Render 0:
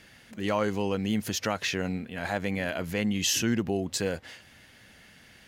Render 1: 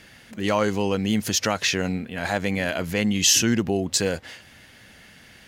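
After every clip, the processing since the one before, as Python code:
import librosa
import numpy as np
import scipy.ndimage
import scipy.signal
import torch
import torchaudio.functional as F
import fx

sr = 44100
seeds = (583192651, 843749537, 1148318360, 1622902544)

y = fx.dynamic_eq(x, sr, hz=6200.0, q=0.75, threshold_db=-46.0, ratio=4.0, max_db=5)
y = y * 10.0 ** (5.0 / 20.0)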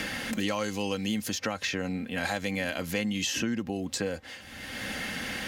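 y = x + 0.4 * np.pad(x, (int(3.8 * sr / 1000.0), 0))[:len(x)]
y = fx.band_squash(y, sr, depth_pct=100)
y = y * 10.0 ** (-8.5 / 20.0)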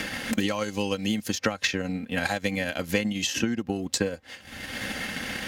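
y = fx.transient(x, sr, attack_db=8, sustain_db=-9)
y = y * 10.0 ** (1.5 / 20.0)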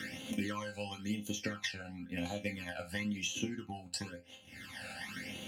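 y = scipy.signal.sosfilt(scipy.signal.butter(2, 88.0, 'highpass', fs=sr, output='sos'), x)
y = fx.resonator_bank(y, sr, root=41, chord='minor', decay_s=0.25)
y = fx.phaser_stages(y, sr, stages=12, low_hz=330.0, high_hz=1700.0, hz=0.97, feedback_pct=35)
y = y * 10.0 ** (2.0 / 20.0)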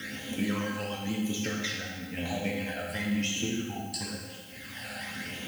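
y = fx.dmg_noise_colour(x, sr, seeds[0], colour='violet', level_db=-60.0)
y = fx.vibrato(y, sr, rate_hz=9.2, depth_cents=48.0)
y = fx.rev_plate(y, sr, seeds[1], rt60_s=1.5, hf_ratio=0.85, predelay_ms=0, drr_db=-2.0)
y = y * 10.0 ** (2.5 / 20.0)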